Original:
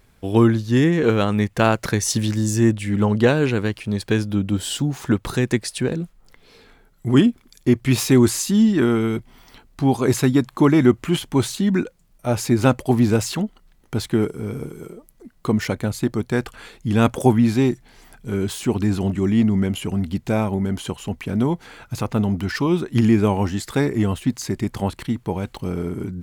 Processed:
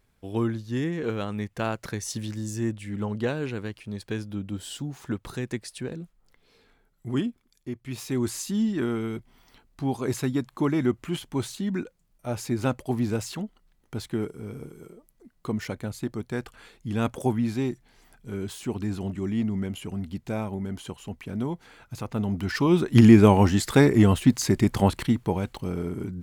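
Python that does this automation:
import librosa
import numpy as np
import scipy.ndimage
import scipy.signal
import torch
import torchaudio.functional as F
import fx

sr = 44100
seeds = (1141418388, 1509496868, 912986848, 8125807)

y = fx.gain(x, sr, db=fx.line((7.12, -11.5), (7.8, -19.0), (8.39, -9.5), (22.05, -9.5), (22.99, 2.5), (24.94, 2.5), (25.66, -4.5)))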